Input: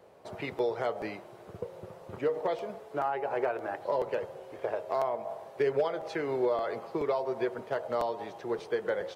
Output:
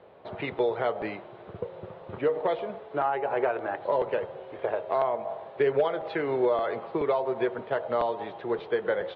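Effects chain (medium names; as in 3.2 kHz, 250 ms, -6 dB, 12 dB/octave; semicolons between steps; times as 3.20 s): Chebyshev low-pass 3.7 kHz, order 4; trim +4.5 dB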